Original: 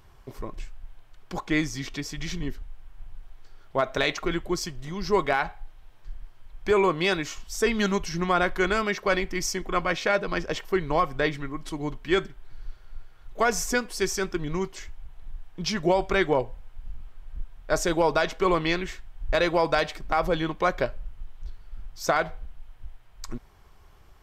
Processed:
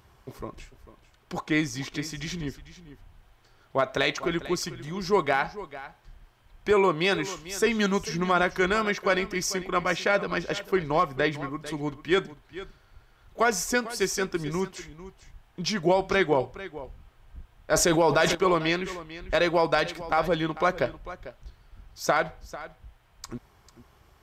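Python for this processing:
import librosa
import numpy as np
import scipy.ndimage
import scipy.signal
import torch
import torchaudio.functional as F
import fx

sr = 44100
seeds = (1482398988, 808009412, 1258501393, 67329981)

y = scipy.signal.sosfilt(scipy.signal.butter(2, 58.0, 'highpass', fs=sr, output='sos'), x)
y = y + 10.0 ** (-15.5 / 20.0) * np.pad(y, (int(446 * sr / 1000.0), 0))[:len(y)]
y = fx.env_flatten(y, sr, amount_pct=70, at=(17.73, 18.35))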